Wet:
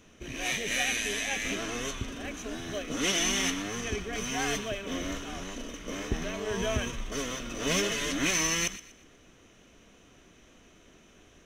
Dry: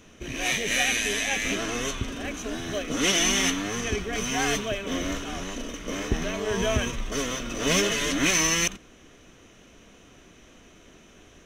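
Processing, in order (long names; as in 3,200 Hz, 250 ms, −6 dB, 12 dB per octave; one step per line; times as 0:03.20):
delay with a high-pass on its return 120 ms, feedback 34%, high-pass 1,500 Hz, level −14.5 dB
level −5 dB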